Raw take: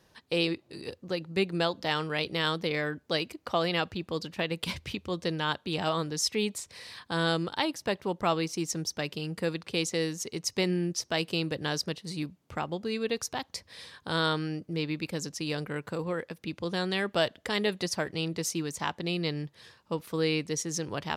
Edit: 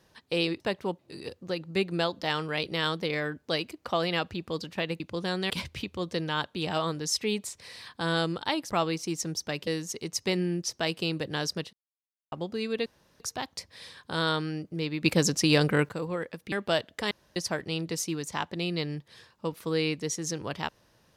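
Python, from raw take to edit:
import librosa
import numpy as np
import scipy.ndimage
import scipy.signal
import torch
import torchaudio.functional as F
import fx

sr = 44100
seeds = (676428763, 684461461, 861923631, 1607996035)

y = fx.edit(x, sr, fx.move(start_s=7.81, length_s=0.39, to_s=0.6),
    fx.cut(start_s=9.17, length_s=0.81),
    fx.silence(start_s=12.04, length_s=0.59),
    fx.insert_room_tone(at_s=13.17, length_s=0.34),
    fx.clip_gain(start_s=15.01, length_s=0.85, db=10.5),
    fx.move(start_s=16.49, length_s=0.5, to_s=4.61),
    fx.room_tone_fill(start_s=17.58, length_s=0.25), tone=tone)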